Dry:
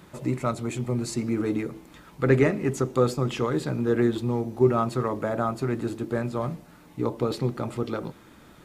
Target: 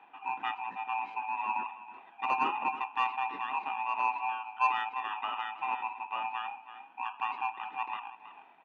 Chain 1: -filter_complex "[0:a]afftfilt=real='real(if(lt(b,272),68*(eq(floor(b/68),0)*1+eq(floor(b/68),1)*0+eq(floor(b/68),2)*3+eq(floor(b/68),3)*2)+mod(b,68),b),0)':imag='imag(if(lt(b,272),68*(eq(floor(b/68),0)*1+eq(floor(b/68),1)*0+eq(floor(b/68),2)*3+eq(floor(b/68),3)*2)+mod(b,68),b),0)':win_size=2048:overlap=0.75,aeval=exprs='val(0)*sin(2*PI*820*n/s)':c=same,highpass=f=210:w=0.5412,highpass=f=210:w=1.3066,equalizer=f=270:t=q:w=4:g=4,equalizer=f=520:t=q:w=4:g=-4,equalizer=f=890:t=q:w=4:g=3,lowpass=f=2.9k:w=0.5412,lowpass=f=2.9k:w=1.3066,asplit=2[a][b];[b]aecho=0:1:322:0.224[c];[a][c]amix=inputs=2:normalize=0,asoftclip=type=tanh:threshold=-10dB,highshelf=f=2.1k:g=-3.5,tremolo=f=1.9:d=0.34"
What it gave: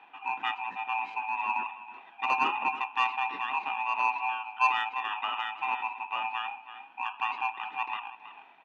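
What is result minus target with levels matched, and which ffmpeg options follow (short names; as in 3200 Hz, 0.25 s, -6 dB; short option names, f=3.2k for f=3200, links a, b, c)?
4000 Hz band +3.5 dB
-filter_complex "[0:a]afftfilt=real='real(if(lt(b,272),68*(eq(floor(b/68),0)*1+eq(floor(b/68),1)*0+eq(floor(b/68),2)*3+eq(floor(b/68),3)*2)+mod(b,68),b),0)':imag='imag(if(lt(b,272),68*(eq(floor(b/68),0)*1+eq(floor(b/68),1)*0+eq(floor(b/68),2)*3+eq(floor(b/68),3)*2)+mod(b,68),b),0)':win_size=2048:overlap=0.75,aeval=exprs='val(0)*sin(2*PI*820*n/s)':c=same,highpass=f=210:w=0.5412,highpass=f=210:w=1.3066,equalizer=f=270:t=q:w=4:g=4,equalizer=f=520:t=q:w=4:g=-4,equalizer=f=890:t=q:w=4:g=3,lowpass=f=2.9k:w=0.5412,lowpass=f=2.9k:w=1.3066,asplit=2[a][b];[b]aecho=0:1:322:0.224[c];[a][c]amix=inputs=2:normalize=0,asoftclip=type=tanh:threshold=-10dB,highshelf=f=2.1k:g=-13.5,tremolo=f=1.9:d=0.34"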